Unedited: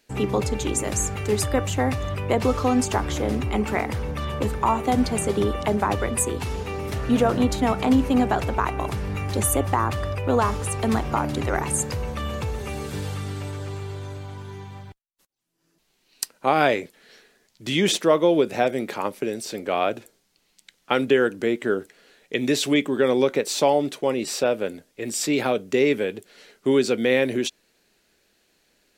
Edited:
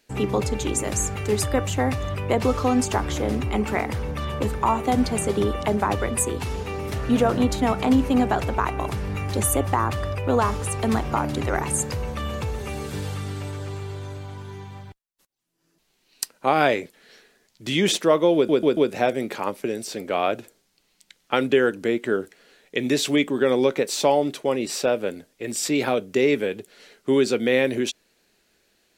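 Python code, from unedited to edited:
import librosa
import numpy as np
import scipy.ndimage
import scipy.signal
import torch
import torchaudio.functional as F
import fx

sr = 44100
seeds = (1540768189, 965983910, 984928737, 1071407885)

y = fx.edit(x, sr, fx.stutter(start_s=18.35, slice_s=0.14, count=4), tone=tone)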